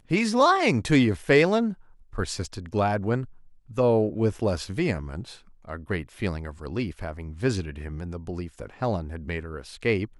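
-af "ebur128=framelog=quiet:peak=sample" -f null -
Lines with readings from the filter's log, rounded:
Integrated loudness:
  I:         -25.9 LUFS
  Threshold: -36.4 LUFS
Loudness range:
  LRA:         8.7 LU
  Threshold: -47.6 LUFS
  LRA low:   -32.1 LUFS
  LRA high:  -23.4 LUFS
Sample peak:
  Peak:       -6.7 dBFS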